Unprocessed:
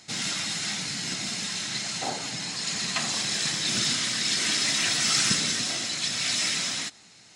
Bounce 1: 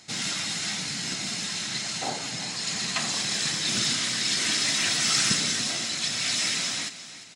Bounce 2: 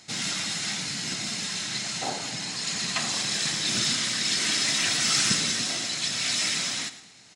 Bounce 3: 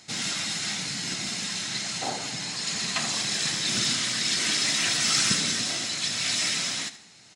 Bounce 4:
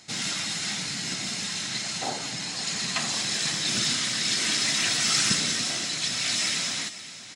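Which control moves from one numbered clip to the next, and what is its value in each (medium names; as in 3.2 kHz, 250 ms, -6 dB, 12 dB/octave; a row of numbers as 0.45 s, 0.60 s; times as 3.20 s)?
feedback delay, time: 351 ms, 109 ms, 74 ms, 520 ms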